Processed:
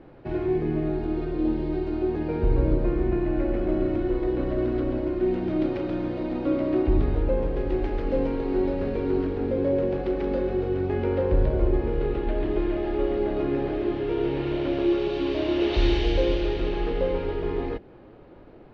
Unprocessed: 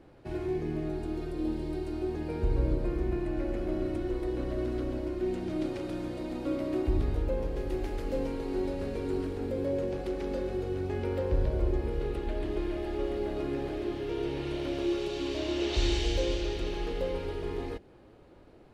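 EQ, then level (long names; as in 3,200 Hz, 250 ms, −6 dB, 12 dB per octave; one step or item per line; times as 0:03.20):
high-frequency loss of the air 280 metres
parametric band 69 Hz −6 dB 0.77 octaves
+8.0 dB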